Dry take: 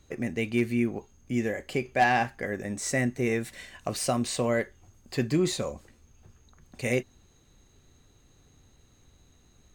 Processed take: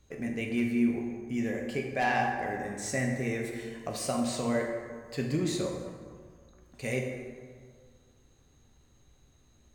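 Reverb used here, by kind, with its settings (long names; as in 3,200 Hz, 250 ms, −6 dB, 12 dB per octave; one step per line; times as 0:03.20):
dense smooth reverb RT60 1.9 s, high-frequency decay 0.5×, DRR 0.5 dB
level −6 dB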